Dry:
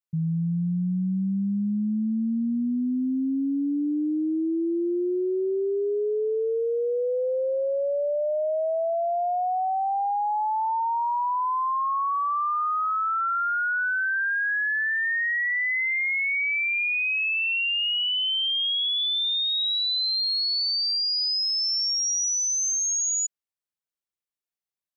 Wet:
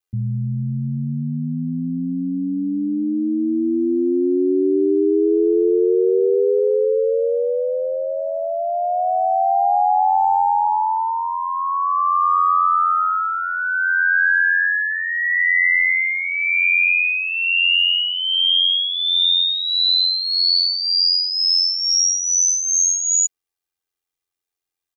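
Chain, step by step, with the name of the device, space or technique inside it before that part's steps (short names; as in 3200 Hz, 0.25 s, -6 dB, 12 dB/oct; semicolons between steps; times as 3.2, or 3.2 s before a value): ring-modulated robot voice (ring modulator 44 Hz; comb 2.5 ms, depth 66%); gain +8.5 dB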